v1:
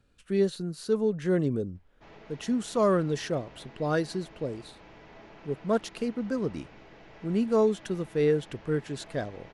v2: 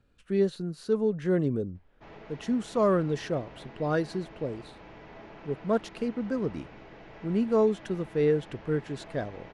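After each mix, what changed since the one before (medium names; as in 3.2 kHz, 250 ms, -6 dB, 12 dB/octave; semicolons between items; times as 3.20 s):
background +3.5 dB; master: add treble shelf 4.3 kHz -9 dB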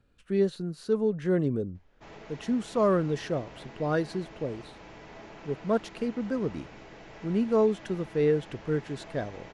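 background: remove distance through air 170 m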